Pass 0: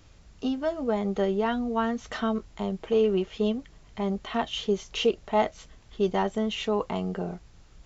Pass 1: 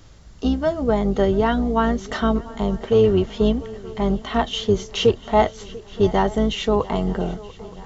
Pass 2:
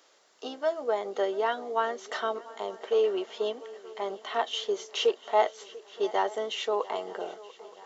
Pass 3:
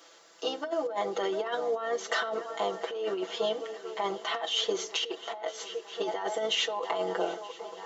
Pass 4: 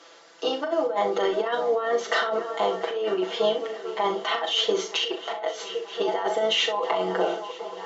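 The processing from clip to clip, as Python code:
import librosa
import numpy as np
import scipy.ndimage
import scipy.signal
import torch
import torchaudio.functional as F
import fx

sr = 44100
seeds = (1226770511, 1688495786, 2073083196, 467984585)

y1 = fx.octave_divider(x, sr, octaves=2, level_db=-4.0)
y1 = fx.peak_eq(y1, sr, hz=2500.0, db=-7.0, octaves=0.23)
y1 = fx.echo_swing(y1, sr, ms=924, ratio=3, feedback_pct=54, wet_db=-20)
y1 = F.gain(torch.from_numpy(y1), 7.0).numpy()
y2 = scipy.signal.sosfilt(scipy.signal.butter(4, 420.0, 'highpass', fs=sr, output='sos'), y1)
y2 = F.gain(torch.from_numpy(y2), -6.0).numpy()
y3 = y2 + 0.91 * np.pad(y2, (int(6.0 * sr / 1000.0), 0))[:len(y2)]
y3 = fx.over_compress(y3, sr, threshold_db=-31.0, ratio=-1.0)
y3 = fx.room_shoebox(y3, sr, seeds[0], volume_m3=2400.0, walls='furnished', distance_m=0.45)
y4 = fx.air_absorb(y3, sr, metres=81.0)
y4 = fx.room_early_taps(y4, sr, ms=(38, 64), db=(-8.5, -12.5))
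y4 = F.gain(torch.from_numpy(y4), 6.0).numpy()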